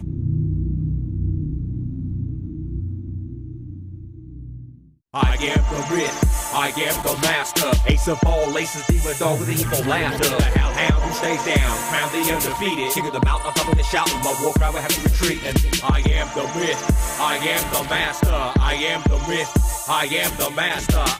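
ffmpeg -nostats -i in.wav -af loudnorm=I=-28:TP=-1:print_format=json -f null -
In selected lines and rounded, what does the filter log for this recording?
"input_i" : "-20.5",
"input_tp" : "-5.6",
"input_lra" : "6.0",
"input_thresh" : "-30.9",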